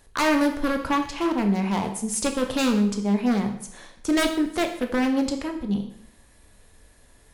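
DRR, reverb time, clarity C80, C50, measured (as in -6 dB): 4.5 dB, 0.70 s, 12.0 dB, 9.0 dB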